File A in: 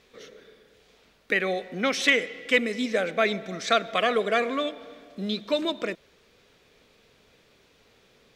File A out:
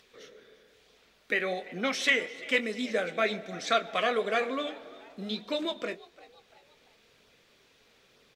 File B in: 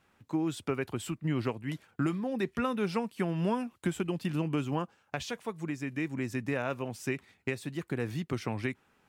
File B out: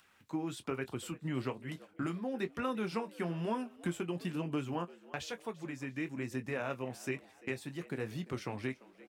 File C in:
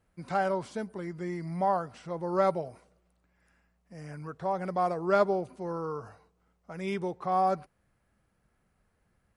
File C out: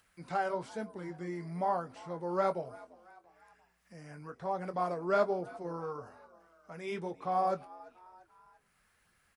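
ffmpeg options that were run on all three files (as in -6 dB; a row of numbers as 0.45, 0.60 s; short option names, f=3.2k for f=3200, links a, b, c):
-filter_complex "[0:a]asplit=2[a][b];[b]adelay=23,volume=-12dB[c];[a][c]amix=inputs=2:normalize=0,asplit=4[d][e][f][g];[e]adelay=343,afreqshift=86,volume=-21dB[h];[f]adelay=686,afreqshift=172,volume=-27.9dB[i];[g]adelay=1029,afreqshift=258,volume=-34.9dB[j];[d][h][i][j]amix=inputs=4:normalize=0,acrossover=split=1200[k][l];[l]acompressor=mode=upward:threshold=-55dB:ratio=2.5[m];[k][m]amix=inputs=2:normalize=0,lowshelf=f=210:g=-4,flanger=delay=0.2:depth=7.9:regen=-60:speed=1.1:shape=sinusoidal"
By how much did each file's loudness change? -4.0, -5.0, -4.5 LU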